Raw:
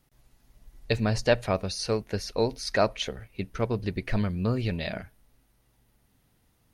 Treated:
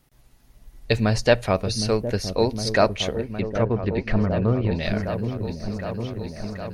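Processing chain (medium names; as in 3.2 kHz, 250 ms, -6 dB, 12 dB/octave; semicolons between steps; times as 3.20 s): 3.19–4.83 s: low-pass that closes with the level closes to 1.4 kHz, closed at -23 dBFS; delay with an opening low-pass 762 ms, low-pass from 400 Hz, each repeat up 1 oct, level -6 dB; trim +5 dB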